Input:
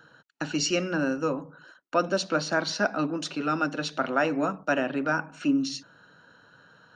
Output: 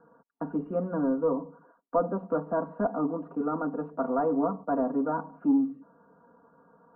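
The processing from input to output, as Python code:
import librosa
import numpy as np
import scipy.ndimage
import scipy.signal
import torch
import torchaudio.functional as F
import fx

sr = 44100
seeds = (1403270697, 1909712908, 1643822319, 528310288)

y = fx.low_shelf(x, sr, hz=140.0, db=-6.0)
y = y + 0.91 * np.pad(y, (int(4.3 * sr / 1000.0), 0))[:len(y)]
y = 10.0 ** (-15.0 / 20.0) * np.tanh(y / 10.0 ** (-15.0 / 20.0))
y = scipy.signal.sosfilt(scipy.signal.ellip(4, 1.0, 80, 1100.0, 'lowpass', fs=sr, output='sos'), y)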